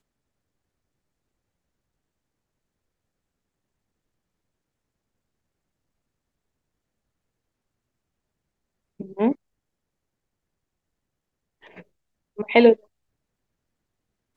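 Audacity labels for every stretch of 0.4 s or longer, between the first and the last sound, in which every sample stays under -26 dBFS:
9.320000	12.390000	silence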